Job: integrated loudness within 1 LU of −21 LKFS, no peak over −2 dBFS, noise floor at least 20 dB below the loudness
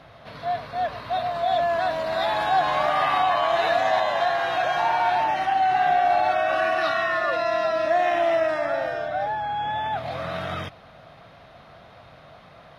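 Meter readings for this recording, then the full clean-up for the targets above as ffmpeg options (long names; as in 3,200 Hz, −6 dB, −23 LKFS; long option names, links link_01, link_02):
integrated loudness −23.0 LKFS; sample peak −11.0 dBFS; target loudness −21.0 LKFS
→ -af "volume=2dB"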